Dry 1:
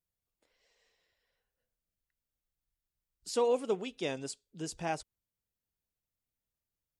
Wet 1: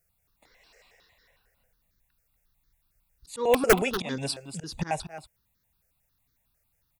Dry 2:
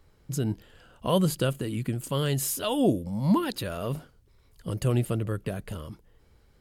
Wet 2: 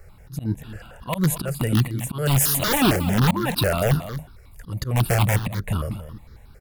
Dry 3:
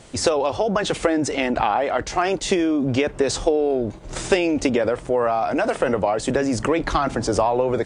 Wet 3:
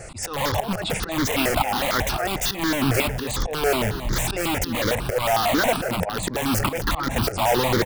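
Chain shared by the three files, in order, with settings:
band-stop 3.1 kHz, Q 5.9; slow attack 282 ms; in parallel at +1 dB: integer overflow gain 24 dB; on the sum: delay 238 ms -11.5 dB; stepped phaser 11 Hz 990–2600 Hz; peak normalisation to -6 dBFS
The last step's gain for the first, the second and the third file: +11.5 dB, +8.0 dB, +4.0 dB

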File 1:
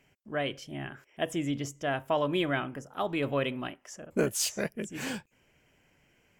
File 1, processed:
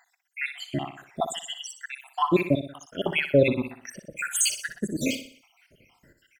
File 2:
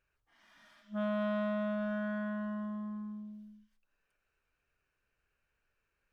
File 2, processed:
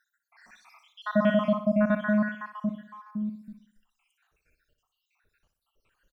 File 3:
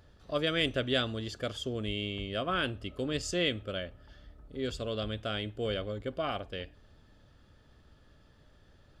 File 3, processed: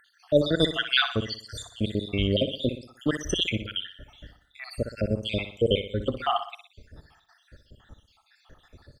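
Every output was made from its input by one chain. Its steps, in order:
random holes in the spectrogram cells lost 76%; feedback delay 61 ms, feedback 44%, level -10 dB; normalise loudness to -27 LUFS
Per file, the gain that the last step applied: +12.0 dB, +14.0 dB, +12.5 dB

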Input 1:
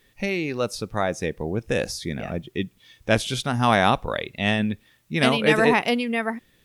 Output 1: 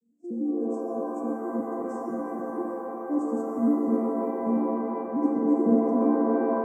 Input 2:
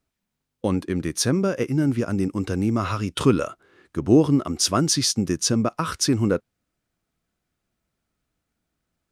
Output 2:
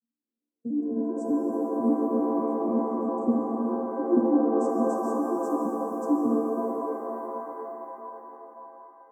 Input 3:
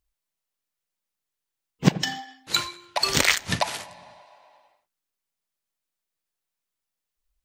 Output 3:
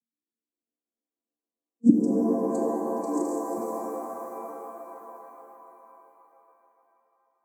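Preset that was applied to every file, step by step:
vocoder on a broken chord major triad, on A#3, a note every 99 ms; inverse Chebyshev band-stop 1.1–3.4 kHz, stop band 70 dB; tilt EQ +1.5 dB/octave; pitch-shifted reverb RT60 3.7 s, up +7 st, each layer -2 dB, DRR 1 dB; normalise loudness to -27 LUFS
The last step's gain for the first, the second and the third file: 0.0 dB, -3.0 dB, +2.5 dB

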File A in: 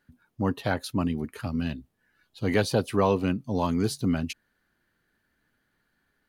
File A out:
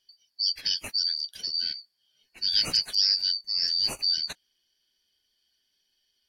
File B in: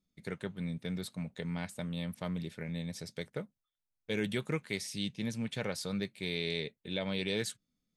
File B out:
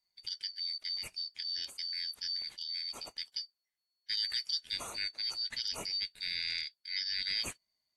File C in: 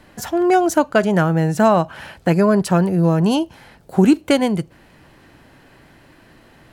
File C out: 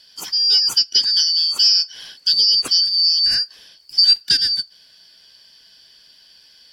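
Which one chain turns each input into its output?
four frequency bands reordered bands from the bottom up 4321; trim -1 dB; AAC 64 kbps 44.1 kHz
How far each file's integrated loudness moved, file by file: +3.0 LU, +2.0 LU, +3.0 LU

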